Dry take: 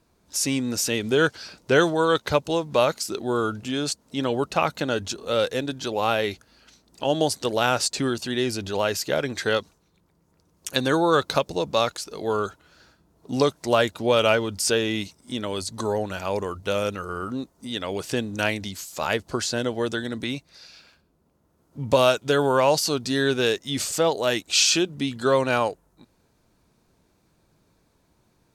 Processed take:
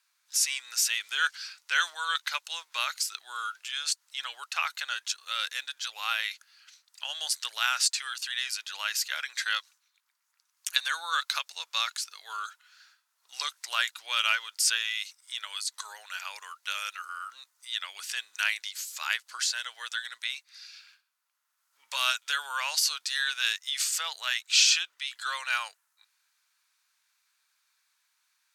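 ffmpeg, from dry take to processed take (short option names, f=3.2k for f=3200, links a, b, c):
-filter_complex "[0:a]asettb=1/sr,asplit=3[a][b][c];[a]atrim=end=24.204[d];[b]atrim=start=24.2:end=25.06,asetpts=PTS-STARTPTS,afade=t=in:d=0.004:c=qsin,afade=t=out:st=0.856:d=0.004:c=qsin,equalizer=f=11k:t=o:w=1.2:g=-6[e];[c]atrim=start=25.056[f];[d][e]acrossfade=d=0.004:c1=hsin:c2=qsin[g];[g][f]acrossfade=d=0.004:c1=qsin:c2=hsin,highpass=f=1.4k:w=0.5412,highpass=f=1.4k:w=1.3066"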